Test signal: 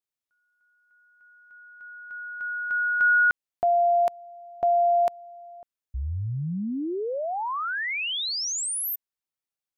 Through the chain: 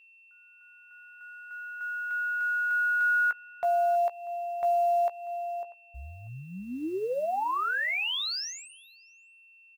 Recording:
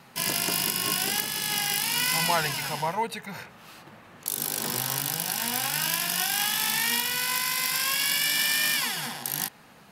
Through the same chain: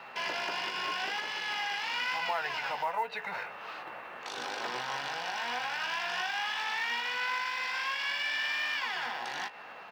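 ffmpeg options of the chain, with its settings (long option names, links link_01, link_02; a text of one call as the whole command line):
ffmpeg -i in.wav -filter_complex "[0:a]lowpass=frequency=5500:width=0.5412,lowpass=frequency=5500:width=1.3066,acrossover=split=440 2700:gain=0.0794 1 0.224[link_01][link_02][link_03];[link_01][link_02][link_03]amix=inputs=3:normalize=0,acompressor=threshold=-38dB:ratio=3:attack=0.2:release=343:knee=1:detection=peak,aeval=exprs='val(0)+0.000631*sin(2*PI*2700*n/s)':channel_layout=same,acrusher=bits=8:mode=log:mix=0:aa=0.000001,asplit=2[link_04][link_05];[link_05]adelay=16,volume=-10dB[link_06];[link_04][link_06]amix=inputs=2:normalize=0,asplit=2[link_07][link_08];[link_08]adelay=641.4,volume=-21dB,highshelf=frequency=4000:gain=-14.4[link_09];[link_07][link_09]amix=inputs=2:normalize=0,volume=8dB" out.wav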